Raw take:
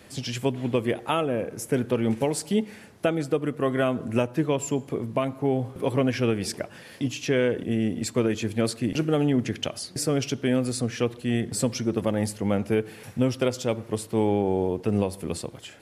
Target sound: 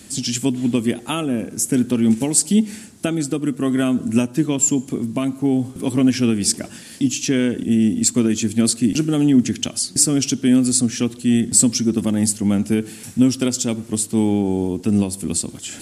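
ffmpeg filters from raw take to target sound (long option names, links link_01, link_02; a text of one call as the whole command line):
ffmpeg -i in.wav -af "equalizer=frequency=125:width_type=o:width=1:gain=-5,equalizer=frequency=250:width_type=o:width=1:gain=8,equalizer=frequency=500:width_type=o:width=1:gain=-11,equalizer=frequency=1000:width_type=o:width=1:gain=-6,equalizer=frequency=2000:width_type=o:width=1:gain=-5,equalizer=frequency=8000:width_type=o:width=1:gain=12,areverse,acompressor=mode=upward:threshold=-33dB:ratio=2.5,areverse,volume=6.5dB" out.wav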